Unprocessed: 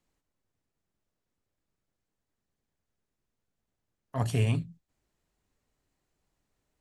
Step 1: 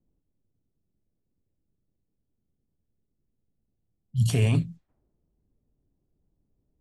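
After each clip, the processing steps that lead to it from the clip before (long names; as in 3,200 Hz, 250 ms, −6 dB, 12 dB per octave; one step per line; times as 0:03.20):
low-pass that shuts in the quiet parts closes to 320 Hz, open at −31 dBFS
healed spectral selection 0:03.83–0:04.27, 220–2,800 Hz before
brickwall limiter −21.5 dBFS, peak gain reduction 6 dB
level +8 dB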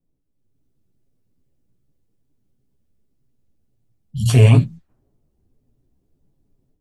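multi-voice chorus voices 4, 0.81 Hz, delay 12 ms, depth 4.9 ms
dynamic equaliser 950 Hz, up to +5 dB, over −46 dBFS, Q 0.79
automatic gain control gain up to 9 dB
level +2.5 dB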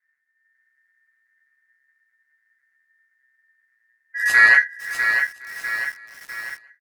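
ring modulation 1,800 Hz
repeating echo 532 ms, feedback 49%, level −19 dB
feedback echo at a low word length 650 ms, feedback 55%, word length 6 bits, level −6.5 dB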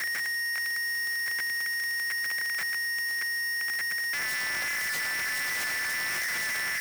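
sign of each sample alone
frequency shifter +70 Hz
level −5.5 dB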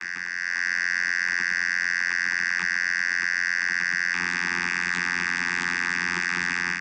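automatic gain control gain up to 7 dB
channel vocoder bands 16, saw 87.9 Hz
Chebyshev band-stop filter 360–900 Hz, order 2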